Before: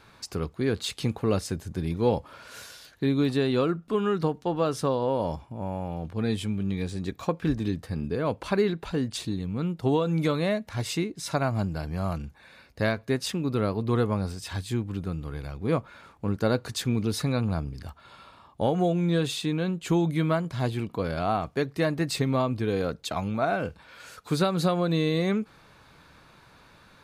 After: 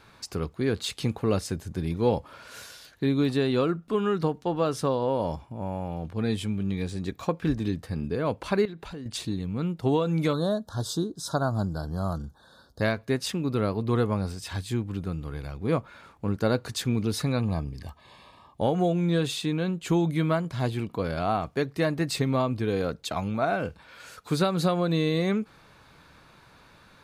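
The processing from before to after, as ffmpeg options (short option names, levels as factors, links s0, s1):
-filter_complex "[0:a]asettb=1/sr,asplit=3[s0][s1][s2];[s0]atrim=end=8.654[s3];[s1]atrim=start=8.65:end=9.06,asetpts=PTS-STARTPTS,afade=t=in:d=0.004:c=qsin,afade=t=out:st=0.406:d=0.004:c=qsin,acompressor=threshold=0.0158:ratio=5:attack=3.2:release=140:knee=1:detection=peak[s4];[s2]atrim=start=9.056[s5];[s3][s4]acrossfade=d=0.004:c1=hsin:c2=qsin[s6];[s6][s5]acrossfade=d=0.004:c1=qsin:c2=hsin,asettb=1/sr,asplit=3[s7][s8][s9];[s7]atrim=end=10.334[s10];[s8]atrim=start=10.33:end=12.81,asetpts=PTS-STARTPTS,afade=t=in:d=0.004:c=qsin,afade=t=out:st=2.476:d=0.004:c=qsin,asuperstop=centerf=2300:order=8:qfactor=1.3[s11];[s9]atrim=start=12.806[s12];[s10][s11]acrossfade=d=0.004:c1=hsin:c2=qsin[s13];[s13][s12]acrossfade=d=0.004:c1=qsin:c2=hsin,asettb=1/sr,asplit=3[s14][s15][s16];[s14]atrim=end=17.394[s17];[s15]atrim=start=17.39:end=18.61,asetpts=PTS-STARTPTS,afade=t=in:d=0.004:c=qsin,afade=t=out:st=1.216:d=0.004:c=qsin,asuperstop=centerf=1400:order=20:qfactor=5.6[s18];[s16]atrim=start=18.606[s19];[s17][s18]acrossfade=d=0.004:c1=hsin:c2=qsin[s20];[s20][s19]acrossfade=d=0.004:c1=qsin:c2=hsin"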